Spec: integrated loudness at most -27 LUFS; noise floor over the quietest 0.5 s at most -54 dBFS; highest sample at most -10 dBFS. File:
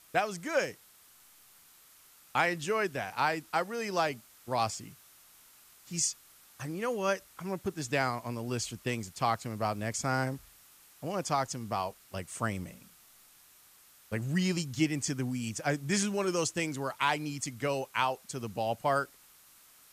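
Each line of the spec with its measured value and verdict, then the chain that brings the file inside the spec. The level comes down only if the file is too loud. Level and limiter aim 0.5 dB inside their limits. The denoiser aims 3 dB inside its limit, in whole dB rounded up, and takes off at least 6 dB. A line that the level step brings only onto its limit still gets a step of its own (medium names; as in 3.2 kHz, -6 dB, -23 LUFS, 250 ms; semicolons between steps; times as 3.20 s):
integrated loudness -32.5 LUFS: pass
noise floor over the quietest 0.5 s -59 dBFS: pass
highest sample -16.0 dBFS: pass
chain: none needed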